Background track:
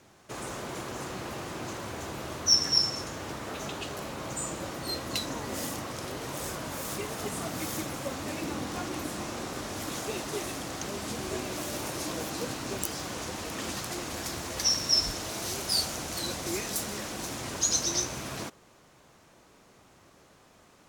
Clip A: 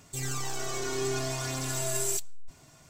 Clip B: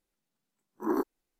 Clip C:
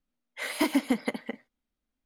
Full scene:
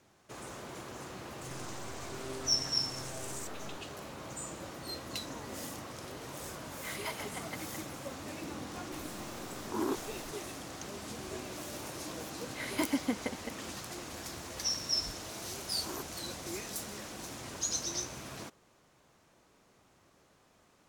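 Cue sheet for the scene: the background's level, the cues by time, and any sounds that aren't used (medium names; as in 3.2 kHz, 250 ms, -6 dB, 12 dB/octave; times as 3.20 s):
background track -7.5 dB
1.28 s: add A -12.5 dB + loudspeaker Doppler distortion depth 0.41 ms
6.45 s: add C -8.5 dB + high-pass 650 Hz 24 dB/octave
8.92 s: add B -6 dB + level flattener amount 70%
12.18 s: add C -6.5 dB
15.00 s: add B -11 dB + RIAA curve recording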